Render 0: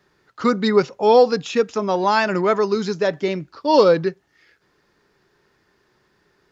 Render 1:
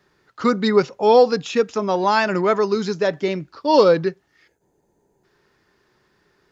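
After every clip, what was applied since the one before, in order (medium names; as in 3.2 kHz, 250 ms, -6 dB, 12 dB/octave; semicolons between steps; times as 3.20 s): time-frequency box 4.47–5.24 s, 1–6 kHz -17 dB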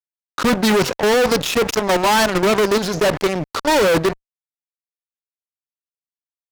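transient shaper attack -1 dB, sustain +4 dB; level held to a coarse grid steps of 20 dB; fuzz box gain 39 dB, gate -41 dBFS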